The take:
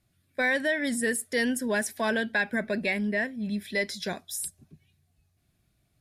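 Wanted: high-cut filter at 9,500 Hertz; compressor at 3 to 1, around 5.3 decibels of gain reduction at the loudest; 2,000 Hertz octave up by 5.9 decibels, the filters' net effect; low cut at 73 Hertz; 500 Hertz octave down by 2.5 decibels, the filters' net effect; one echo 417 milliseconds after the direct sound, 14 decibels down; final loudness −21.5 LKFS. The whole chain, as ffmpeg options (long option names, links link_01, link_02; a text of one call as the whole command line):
ffmpeg -i in.wav -af "highpass=73,lowpass=9500,equalizer=frequency=500:width_type=o:gain=-3.5,equalizer=frequency=2000:width_type=o:gain=7,acompressor=threshold=-25dB:ratio=3,aecho=1:1:417:0.2,volume=7dB" out.wav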